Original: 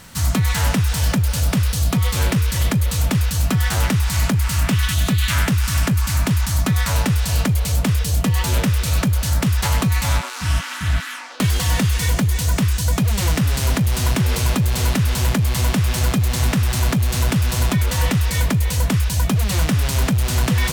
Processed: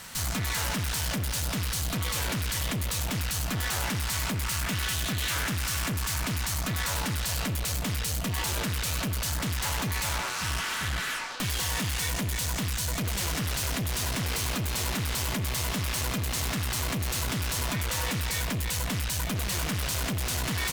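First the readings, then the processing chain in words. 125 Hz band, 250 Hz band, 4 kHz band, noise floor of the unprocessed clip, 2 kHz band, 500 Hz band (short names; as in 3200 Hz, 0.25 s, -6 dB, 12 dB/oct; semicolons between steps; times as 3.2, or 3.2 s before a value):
-14.0 dB, -12.5 dB, -5.0 dB, -26 dBFS, -6.0 dB, -9.0 dB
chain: low shelf 490 Hz -10 dB; tube stage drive 32 dB, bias 0.65; speakerphone echo 90 ms, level -10 dB; gain +4.5 dB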